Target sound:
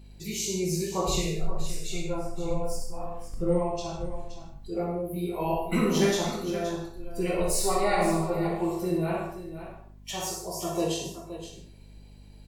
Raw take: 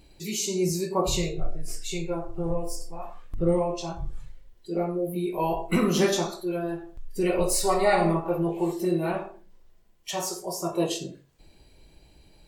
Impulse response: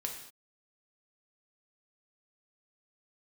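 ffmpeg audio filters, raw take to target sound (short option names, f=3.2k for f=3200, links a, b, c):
-filter_complex "[0:a]aecho=1:1:63|522:0.355|0.266[a];[1:a]atrim=start_sample=2205,afade=t=out:st=0.21:d=0.01,atrim=end_sample=9702[b];[a][b]afir=irnorm=-1:irlink=0,aeval=exprs='val(0)+0.00501*(sin(2*PI*50*n/s)+sin(2*PI*2*50*n/s)/2+sin(2*PI*3*50*n/s)/3+sin(2*PI*4*50*n/s)/4+sin(2*PI*5*50*n/s)/5)':c=same,volume=-2.5dB"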